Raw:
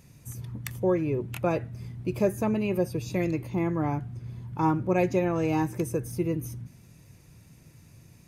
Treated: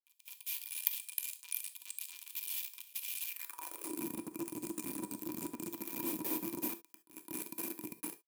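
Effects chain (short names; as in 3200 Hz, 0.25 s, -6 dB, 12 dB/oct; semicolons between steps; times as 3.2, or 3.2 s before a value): spectral delay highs late, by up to 0.201 s; inverse Chebyshev band-stop 250–3900 Hz, stop band 80 dB; in parallel at -3 dB: sample-and-hold 33×; on the sum: echoes that change speed 0.147 s, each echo -3 st, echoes 3, each echo -6 dB; bit-crush 9-bit; EQ curve 110 Hz 0 dB, 3900 Hz +6 dB, 9000 Hz +12 dB; on a send: reverse echo 0.211 s -18.5 dB; on the sum: non-linear reverb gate 90 ms flat, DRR 10 dB; high-pass sweep 3100 Hz -> 210 Hz, 3.27–4.04; small resonant body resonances 320/970/2400 Hz, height 18 dB, ringing for 45 ms; gain +5.5 dB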